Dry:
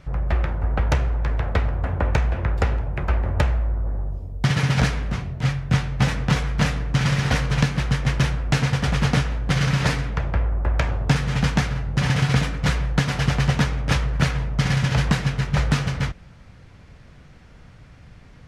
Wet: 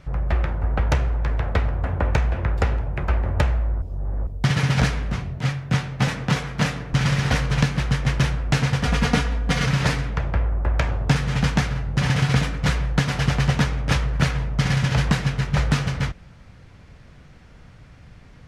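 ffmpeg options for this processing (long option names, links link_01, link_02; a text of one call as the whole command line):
ffmpeg -i in.wav -filter_complex "[0:a]asettb=1/sr,asplit=3[link_01][link_02][link_03];[link_01]atrim=end=5.394[link_04];[link_02]atrim=start=5.39:end=6.93,asetpts=PTS-STARTPTS,afade=type=in:duration=0.004:curve=qsin,afade=type=out:start_time=1.536:duration=0.004:curve=qsin,highpass=110[link_05];[link_03]atrim=start=6.926[link_06];[link_04][link_05]acrossfade=duration=0.004:curve1=hsin:curve2=qsin[link_07];[link_07][link_06]acrossfade=duration=0.004:curve1=qsin:curve2=hsin,asettb=1/sr,asplit=3[link_08][link_09][link_10];[link_08]atrim=end=8.854[link_11];[link_09]atrim=start=8.85:end=9.66,asetpts=PTS-STARTPTS,afade=type=in:duration=0.004:curve=qsin,afade=type=out:start_time=0.806:duration=0.004:curve=qsin,aecho=1:1:4.2:0.65,atrim=end_sample=35721[link_12];[link_10]atrim=start=9.656[link_13];[link_11][link_12]acrossfade=duration=0.004:curve1=hsin:curve2=qsin[link_14];[link_14][link_13]acrossfade=duration=0.004:curve1=qsin:curve2=hsin,asplit=3[link_15][link_16][link_17];[link_15]atrim=end=3.822[link_18];[link_16]atrim=start=3.818:end=4.272,asetpts=PTS-STARTPTS,areverse[link_19];[link_17]atrim=start=4.268[link_20];[link_18][link_19]acrossfade=duration=0.004:curve1=hsin:curve2=hsin[link_21];[link_21][link_20]acrossfade=duration=0.004:curve1=hsin:curve2=hsin" out.wav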